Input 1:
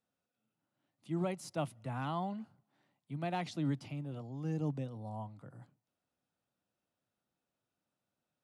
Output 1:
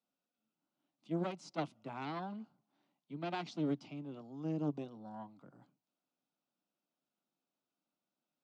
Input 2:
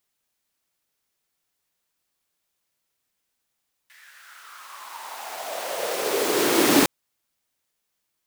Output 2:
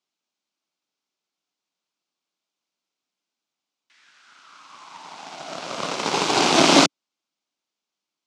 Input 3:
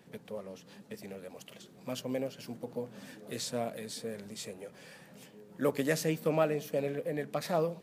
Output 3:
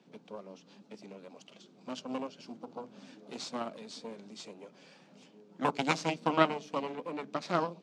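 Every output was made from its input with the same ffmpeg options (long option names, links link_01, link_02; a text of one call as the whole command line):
ffmpeg -i in.wav -af "aeval=exprs='0.631*(cos(1*acos(clip(val(0)/0.631,-1,1)))-cos(1*PI/2))+0.1*(cos(3*acos(clip(val(0)/0.631,-1,1)))-cos(3*PI/2))+0.282*(cos(6*acos(clip(val(0)/0.631,-1,1)))-cos(6*PI/2))':channel_layout=same,highpass=frequency=170:width=0.5412,highpass=frequency=170:width=1.3066,equalizer=frequency=290:width_type=q:width=4:gain=3,equalizer=frequency=490:width_type=q:width=4:gain=-4,equalizer=frequency=1800:width_type=q:width=4:gain=-9,lowpass=frequency=6400:width=0.5412,lowpass=frequency=6400:width=1.3066,volume=3dB" out.wav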